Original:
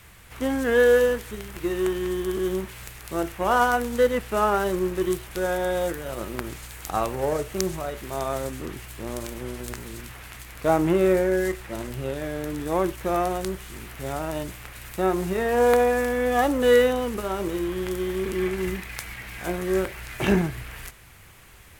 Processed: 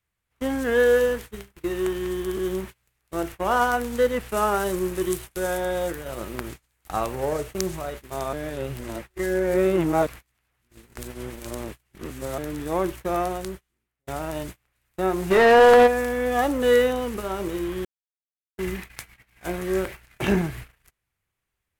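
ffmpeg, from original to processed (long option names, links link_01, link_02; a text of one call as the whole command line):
ffmpeg -i in.wav -filter_complex "[0:a]asettb=1/sr,asplit=3[link_01][link_02][link_03];[link_01]atrim=end=4.294[link_04];[link_02]atrim=start=4.29:end=5.6,asetpts=PTS-STARTPTS,afade=type=in:duration=0.004:curve=qsin,afade=type=out:start_time=1.306:duration=0.004:curve=qsin,equalizer=frequency=10000:width=0.58:gain=6.5[link_05];[link_03]atrim=start=5.596[link_06];[link_04][link_05]acrossfade=duration=0.004:curve1=hsin:curve2=qsin[link_07];[link_07][link_06]acrossfade=duration=0.004:curve1=qsin:curve2=hsin,asplit=3[link_08][link_09][link_10];[link_08]afade=type=out:start_time=15.3:duration=0.02[link_11];[link_09]asplit=2[link_12][link_13];[link_13]highpass=frequency=720:poles=1,volume=25dB,asoftclip=type=tanh:threshold=-4.5dB[link_14];[link_12][link_14]amix=inputs=2:normalize=0,lowpass=frequency=2300:poles=1,volume=-6dB,afade=type=in:start_time=15.3:duration=0.02,afade=type=out:start_time=15.86:duration=0.02[link_15];[link_10]afade=type=in:start_time=15.86:duration=0.02[link_16];[link_11][link_15][link_16]amix=inputs=3:normalize=0,asplit=6[link_17][link_18][link_19][link_20][link_21][link_22];[link_17]atrim=end=8.332[link_23];[link_18]atrim=start=8.328:end=12.382,asetpts=PTS-STARTPTS,areverse[link_24];[link_19]atrim=start=12.378:end=14.07,asetpts=PTS-STARTPTS,afade=type=out:start_time=0.842:duration=0.85:silence=0.0668344[link_25];[link_20]atrim=start=14.07:end=17.85,asetpts=PTS-STARTPTS,afade=type=in:duration=0.004:curve=hsin:silence=0.0668344,afade=type=out:start_time=3.776:duration=0.004:curve=hsin[link_26];[link_21]atrim=start=17.85:end=18.58,asetpts=PTS-STARTPTS,volume=0[link_27];[link_22]atrim=start=18.58,asetpts=PTS-STARTPTS,afade=type=in:duration=0.004:curve=hsin[link_28];[link_23][link_24]acrossfade=duration=0.004:curve1=hsin:curve2=hsin[link_29];[link_25][link_26][link_27][link_28]concat=n=4:v=0:a=1[link_30];[link_29][link_30]acrossfade=duration=0.004:curve1=hsin:curve2=hsin,agate=range=-31dB:threshold=-34dB:ratio=16:detection=peak,volume=-1dB" out.wav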